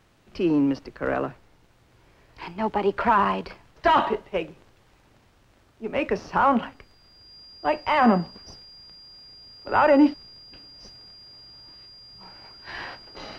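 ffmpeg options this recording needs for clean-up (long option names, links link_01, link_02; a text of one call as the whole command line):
ffmpeg -i in.wav -af "bandreject=frequency=4800:width=30" out.wav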